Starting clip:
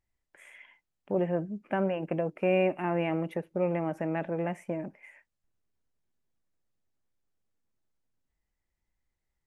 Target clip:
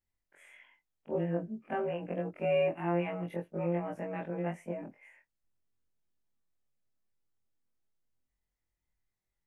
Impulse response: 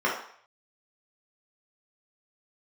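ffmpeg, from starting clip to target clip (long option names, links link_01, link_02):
-af "afftfilt=real='re':imag='-im':win_size=2048:overlap=0.75"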